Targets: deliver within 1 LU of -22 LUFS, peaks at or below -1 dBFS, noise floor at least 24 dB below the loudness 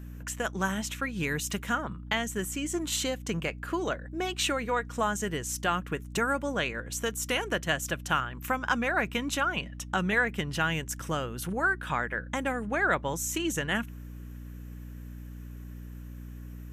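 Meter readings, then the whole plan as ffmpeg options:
hum 60 Hz; highest harmonic 300 Hz; hum level -39 dBFS; loudness -30.0 LUFS; peak level -13.0 dBFS; loudness target -22.0 LUFS
-> -af "bandreject=f=60:t=h:w=4,bandreject=f=120:t=h:w=4,bandreject=f=180:t=h:w=4,bandreject=f=240:t=h:w=4,bandreject=f=300:t=h:w=4"
-af "volume=2.51"

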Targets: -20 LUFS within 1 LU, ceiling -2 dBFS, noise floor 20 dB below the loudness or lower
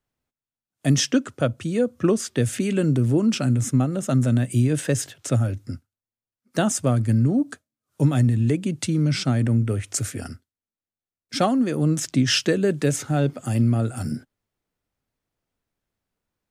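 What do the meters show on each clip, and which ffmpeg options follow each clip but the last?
loudness -22.5 LUFS; peak level -7.5 dBFS; loudness target -20.0 LUFS
-> -af "volume=1.33"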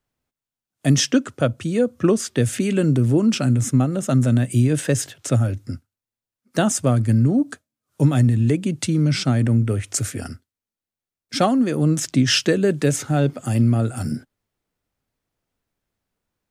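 loudness -20.0 LUFS; peak level -5.0 dBFS; noise floor -91 dBFS

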